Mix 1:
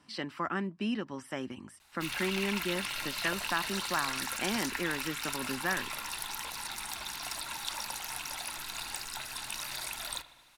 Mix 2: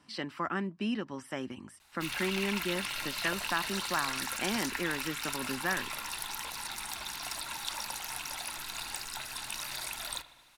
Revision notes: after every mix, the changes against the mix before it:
none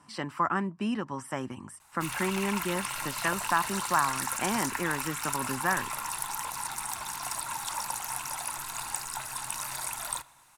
background: send -7.5 dB; master: add ten-band EQ 125 Hz +8 dB, 1000 Hz +10 dB, 4000 Hz -6 dB, 8000 Hz +8 dB, 16000 Hz +4 dB

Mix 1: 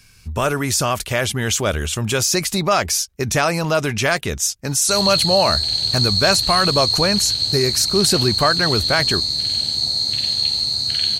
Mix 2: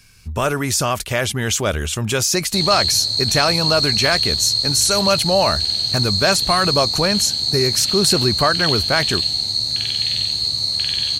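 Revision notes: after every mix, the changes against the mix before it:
background: entry -2.35 s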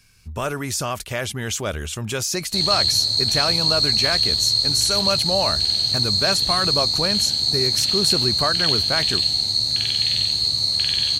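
speech -6.0 dB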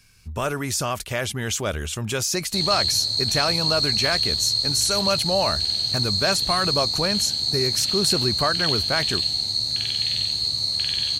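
background -3.5 dB

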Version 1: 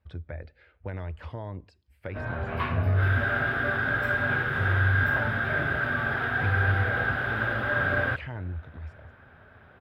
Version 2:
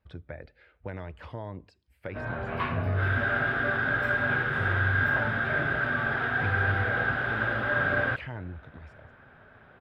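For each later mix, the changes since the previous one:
background: add high shelf 10000 Hz -10.5 dB; master: add bell 80 Hz -9.5 dB 0.49 oct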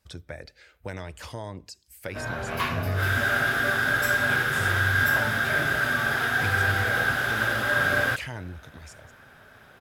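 speech: send +6.0 dB; master: remove air absorption 470 m

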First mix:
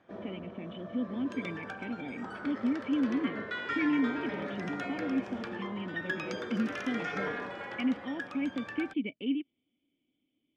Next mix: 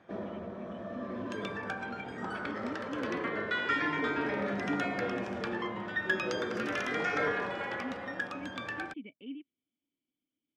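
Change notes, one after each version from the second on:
speech -11.5 dB; background +4.5 dB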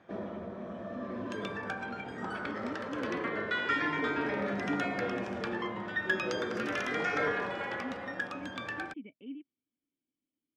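speech: add air absorption 350 m

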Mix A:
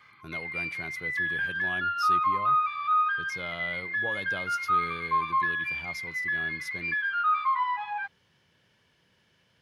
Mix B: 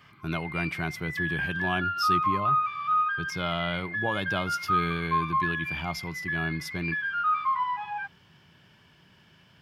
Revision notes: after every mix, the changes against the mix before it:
speech +10.0 dB; master: add thirty-one-band EQ 160 Hz +4 dB, 500 Hz -10 dB, 2000 Hz -5 dB, 4000 Hz -6 dB, 6300 Hz -7 dB, 10000 Hz -10 dB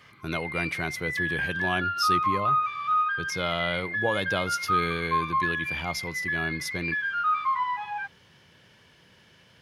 master: add thirty-one-band EQ 160 Hz -4 dB, 500 Hz +10 dB, 2000 Hz +5 dB, 4000 Hz +6 dB, 6300 Hz +7 dB, 10000 Hz +10 dB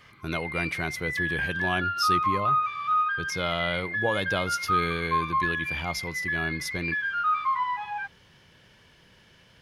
master: remove HPF 78 Hz

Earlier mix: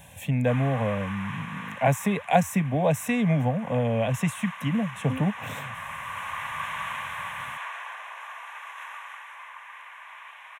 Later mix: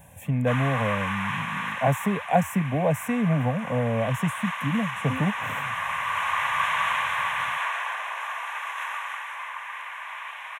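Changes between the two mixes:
speech: add bell 3900 Hz -11.5 dB 1.5 oct; background +8.0 dB

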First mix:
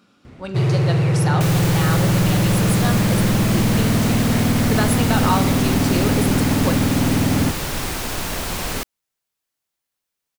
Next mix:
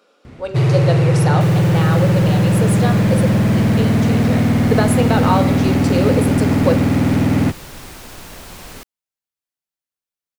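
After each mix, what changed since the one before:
speech: add resonant high-pass 490 Hz, resonance Q 4; first sound +3.5 dB; second sound -10.5 dB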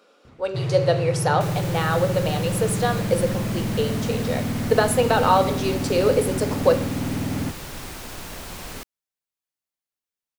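first sound -11.5 dB

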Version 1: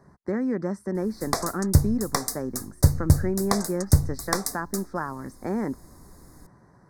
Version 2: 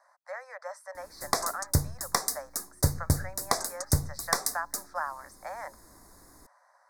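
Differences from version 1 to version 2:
speech: add steep high-pass 550 Hz 96 dB/oct; master: add low shelf 330 Hz -9 dB

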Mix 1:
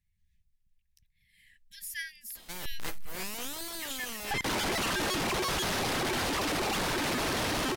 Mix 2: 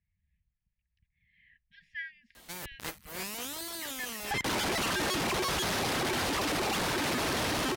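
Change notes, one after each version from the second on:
speech: add LPF 2600 Hz 24 dB/oct; master: add HPF 41 Hz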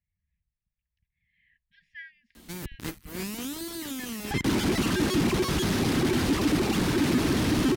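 speech -4.0 dB; background: add resonant low shelf 420 Hz +10 dB, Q 1.5

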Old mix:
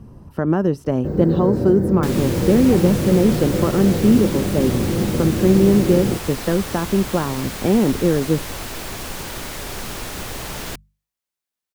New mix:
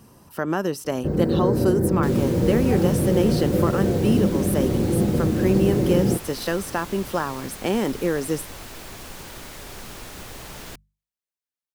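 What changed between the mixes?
speech: add tilt +4 dB/oct; second sound -8.5 dB

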